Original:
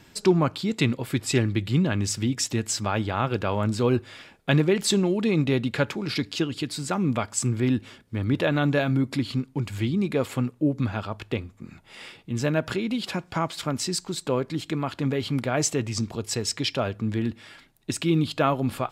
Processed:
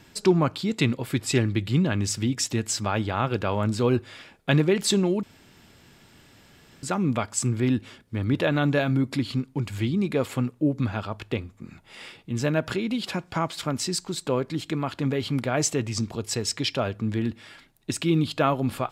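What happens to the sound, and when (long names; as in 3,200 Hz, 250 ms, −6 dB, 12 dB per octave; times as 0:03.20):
0:05.23–0:06.83: fill with room tone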